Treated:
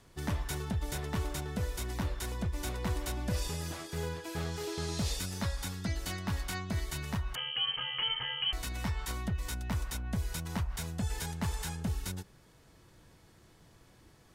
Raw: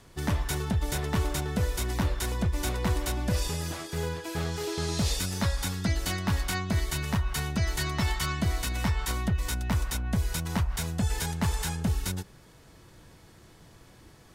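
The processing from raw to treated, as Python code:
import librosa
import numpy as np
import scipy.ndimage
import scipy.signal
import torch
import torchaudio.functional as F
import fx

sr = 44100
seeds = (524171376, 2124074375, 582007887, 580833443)

y = fx.rider(x, sr, range_db=10, speed_s=2.0)
y = fx.freq_invert(y, sr, carrier_hz=3100, at=(7.35, 8.53))
y = y * 10.0 ** (-6.5 / 20.0)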